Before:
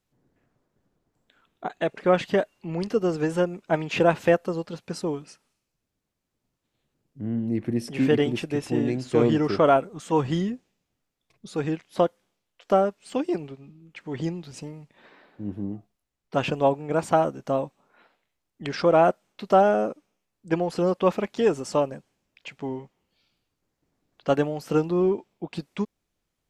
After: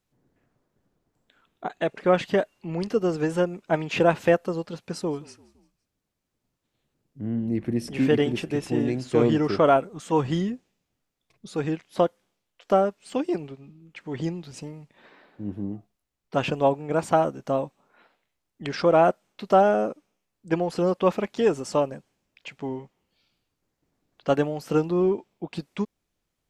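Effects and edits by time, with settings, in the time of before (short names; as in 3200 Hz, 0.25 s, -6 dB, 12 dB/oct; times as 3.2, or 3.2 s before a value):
4.93–9.01 frequency-shifting echo 0.17 s, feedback 53%, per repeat -37 Hz, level -23.5 dB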